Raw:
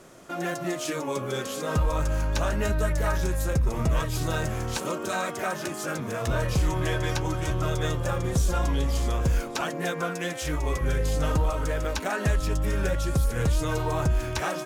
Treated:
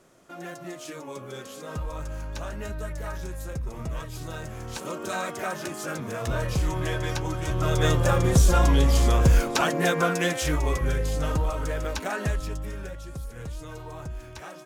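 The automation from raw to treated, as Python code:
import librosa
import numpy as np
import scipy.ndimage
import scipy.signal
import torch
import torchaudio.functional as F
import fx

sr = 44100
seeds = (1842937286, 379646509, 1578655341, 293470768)

y = fx.gain(x, sr, db=fx.line((4.48, -8.5), (5.1, -1.5), (7.44, -1.5), (7.88, 6.0), (10.24, 6.0), (11.09, -1.5), (12.19, -1.5), (12.98, -12.5)))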